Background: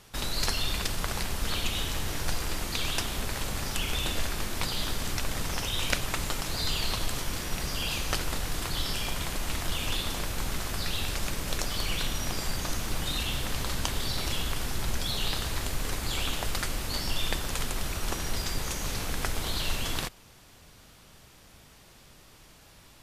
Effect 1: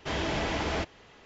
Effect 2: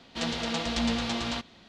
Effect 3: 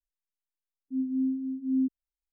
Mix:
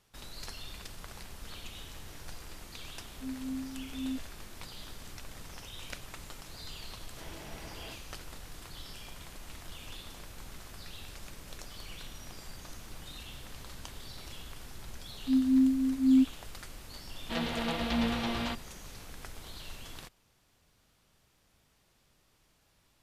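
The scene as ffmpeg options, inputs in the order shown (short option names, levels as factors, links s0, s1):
-filter_complex "[3:a]asplit=2[s0][s1];[0:a]volume=0.178[s2];[s1]highpass=f=270:t=q:w=3[s3];[2:a]lowpass=3300[s4];[s0]atrim=end=2.32,asetpts=PTS-STARTPTS,volume=0.335,afade=t=in:d=0.004:c=hsin,afade=t=out:st=2.316:d=0.004:c=hsin,adelay=2300[s5];[1:a]atrim=end=1.25,asetpts=PTS-STARTPTS,volume=0.126,afade=t=in:d=0.004:c=hsin,afade=t=out:st=1.246:d=0.004:c=hsin,adelay=7110[s6];[s3]atrim=end=2.32,asetpts=PTS-STARTPTS,volume=0.562,afade=t=in:d=0.004:c=hsin,afade=t=out:st=2.316:d=0.004:c=hsin,adelay=14360[s7];[s4]atrim=end=1.68,asetpts=PTS-STARTPTS,volume=0.841,afade=t=in:d=0.004:c=hsin,afade=t=out:st=1.676:d=0.004:c=hsin,adelay=17140[s8];[s2][s5][s6][s7][s8]amix=inputs=5:normalize=0"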